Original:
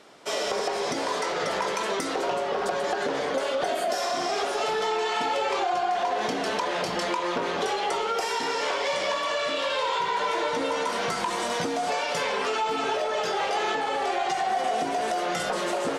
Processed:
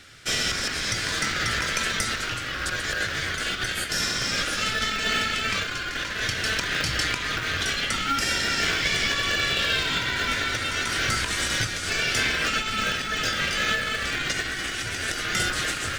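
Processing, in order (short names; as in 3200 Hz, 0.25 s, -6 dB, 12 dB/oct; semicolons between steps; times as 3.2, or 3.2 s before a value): elliptic band-stop 110–1500 Hz, stop band 40 dB; low shelf 190 Hz +11.5 dB; in parallel at -9 dB: sample-rate reducer 1100 Hz, jitter 0%; on the sum: gain +8 dB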